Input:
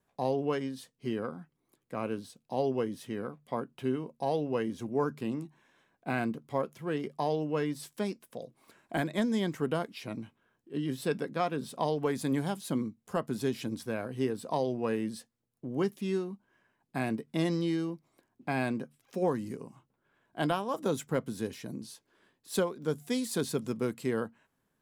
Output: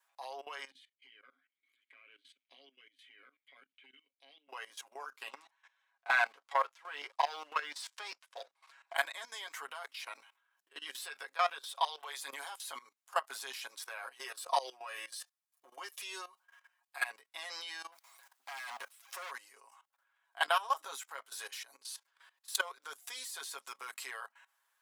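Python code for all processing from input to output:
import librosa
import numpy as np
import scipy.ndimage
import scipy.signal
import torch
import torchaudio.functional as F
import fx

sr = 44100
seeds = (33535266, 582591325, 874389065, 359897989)

y = fx.chain(x, sr, fx.vowel_filter(vowel='i'),
    fx.peak_eq(hz=5400.0, db=-9.0, octaves=0.23),
    fx.band_squash(depth_pct=100), at=(0.7, 4.49))
y = fx.chain(y, sr, fx.lowpass(hz=5900.0, slope=12),
    fx.leveller(passes=1), at=(5.29, 8.95))
y = fx.chain(y, sr, fx.highpass(hz=360.0, slope=24),
    fx.peak_eq(hz=3500.0, db=9.0, octaves=0.3), at=(11.53, 12.2))
y = fx.chain(y, sr, fx.high_shelf(hz=4400.0, db=3.5),
    fx.comb(ms=5.6, depth=0.6), at=(14.2, 17.04))
y = fx.chain(y, sr, fx.law_mismatch(coded='mu'),
    fx.high_shelf(hz=5100.0, db=3.5),
    fx.clip_hard(threshold_db=-32.5), at=(17.92, 19.31))
y = scipy.signal.sosfilt(scipy.signal.butter(4, 890.0, 'highpass', fs=sr, output='sos'), y)
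y = y + 0.74 * np.pad(y, (int(7.3 * sr / 1000.0), 0))[:len(y)]
y = fx.level_steps(y, sr, step_db=17)
y = y * librosa.db_to_amplitude(7.0)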